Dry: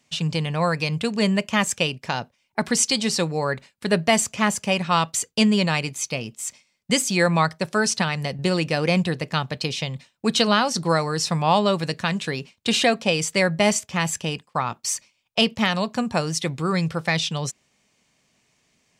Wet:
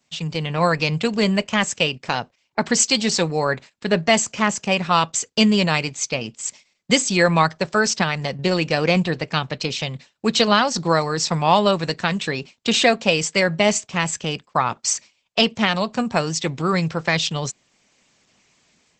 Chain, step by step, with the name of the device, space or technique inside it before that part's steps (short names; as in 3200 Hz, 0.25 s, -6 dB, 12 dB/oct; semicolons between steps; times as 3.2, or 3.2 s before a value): video call (HPF 140 Hz 6 dB/oct; AGC gain up to 8 dB; gain -1 dB; Opus 12 kbps 48000 Hz)